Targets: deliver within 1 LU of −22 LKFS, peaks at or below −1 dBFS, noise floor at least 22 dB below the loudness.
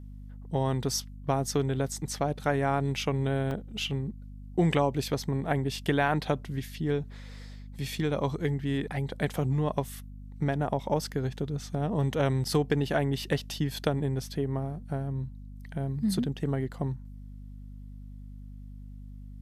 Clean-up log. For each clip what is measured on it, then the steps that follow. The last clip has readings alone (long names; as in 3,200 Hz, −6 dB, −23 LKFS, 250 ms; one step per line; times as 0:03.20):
number of dropouts 1; longest dropout 1.8 ms; mains hum 50 Hz; hum harmonics up to 250 Hz; level of the hum −41 dBFS; integrated loudness −30.0 LKFS; sample peak −12.5 dBFS; target loudness −22.0 LKFS
→ repair the gap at 0:03.51, 1.8 ms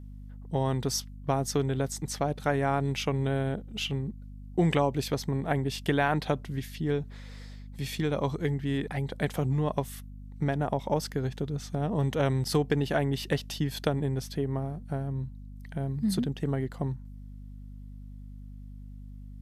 number of dropouts 0; mains hum 50 Hz; hum harmonics up to 250 Hz; level of the hum −41 dBFS
→ hum removal 50 Hz, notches 5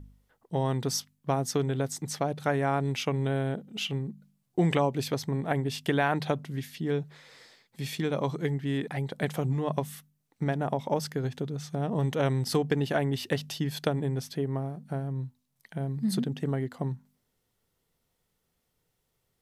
mains hum none found; integrated loudness −30.5 LKFS; sample peak −12.5 dBFS; target loudness −22.0 LKFS
→ level +8.5 dB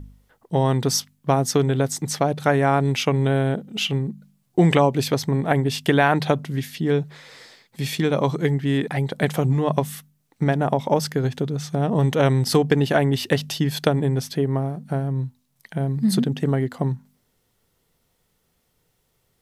integrated loudness −22.0 LKFS; sample peak −4.0 dBFS; background noise floor −69 dBFS